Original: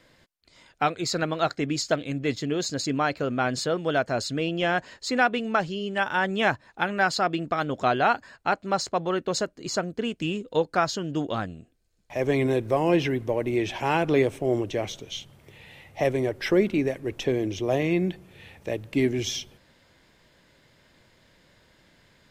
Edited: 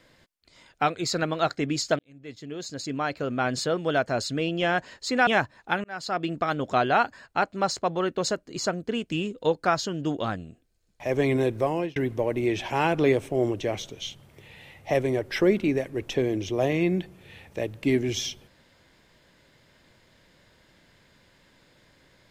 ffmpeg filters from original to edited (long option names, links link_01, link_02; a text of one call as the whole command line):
ffmpeg -i in.wav -filter_complex "[0:a]asplit=5[link_01][link_02][link_03][link_04][link_05];[link_01]atrim=end=1.99,asetpts=PTS-STARTPTS,afade=type=out:start_time=1.986:duration=0.004:curve=hsin[link_06];[link_02]atrim=start=1.99:end=5.272,asetpts=PTS-STARTPTS,afade=type=in:duration=1.58[link_07];[link_03]atrim=start=6.368:end=6.94,asetpts=PTS-STARTPTS,afade=type=out:start_time=0.568:duration=0.004:curve=hsin[link_08];[link_04]atrim=start=6.94:end=13.06,asetpts=PTS-STARTPTS,afade=type=in:duration=0.47,afade=type=out:start_time=5.63:duration=0.49:curve=qsin[link_09];[link_05]atrim=start=13.06,asetpts=PTS-STARTPTS,afade=type=in:duration=0.004:curve=hsin[link_10];[link_06][link_07]concat=n=2:v=0:a=1[link_11];[link_08][link_09][link_10]concat=n=3:v=0:a=1[link_12];[link_11][link_12]acrossfade=duration=0.004:curve1=hsin:curve2=hsin" out.wav